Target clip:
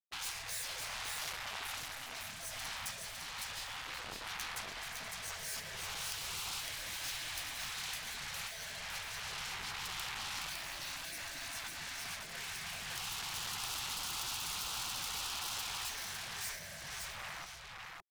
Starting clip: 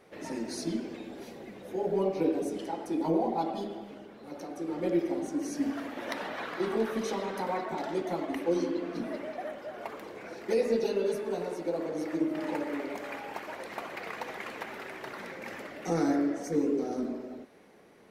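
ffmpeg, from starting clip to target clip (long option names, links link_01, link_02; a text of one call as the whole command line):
ffmpeg -i in.wav -af "afftfilt=real='re*(1-between(b*sr/4096,690,1500))':imag='im*(1-between(b*sr/4096,690,1500))':win_size=4096:overlap=0.75,acrusher=bits=6:mix=0:aa=0.5,acompressor=threshold=-39dB:ratio=6,afftfilt=real='re*lt(hypot(re,im),0.00631)':imag='im*lt(hypot(re,im),0.00631)':win_size=1024:overlap=0.75,aecho=1:1:558:0.668,volume=12dB" out.wav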